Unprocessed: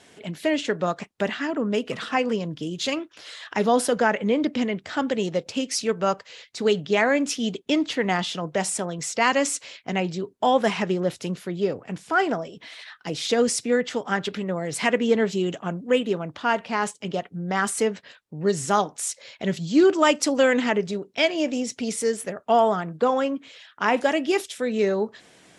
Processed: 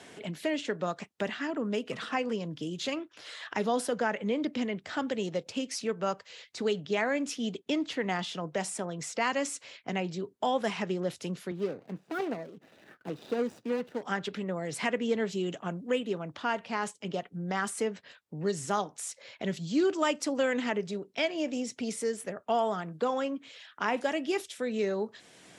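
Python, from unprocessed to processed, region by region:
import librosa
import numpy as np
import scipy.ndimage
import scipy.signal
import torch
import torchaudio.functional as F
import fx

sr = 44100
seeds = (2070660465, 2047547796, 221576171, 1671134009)

y = fx.chain(x, sr, fx.median_filter(points=41),
    fx.highpass(hz=160.0, slope=12),
    fx.high_shelf(hz=4100.0, db=-8.0), at=(11.51, 14.03))
y = scipy.signal.sosfilt(scipy.signal.butter(2, 57.0, 'highpass', fs=sr, output='sos'), y)
y = fx.band_squash(y, sr, depth_pct=40)
y = y * 10.0 ** (-8.0 / 20.0)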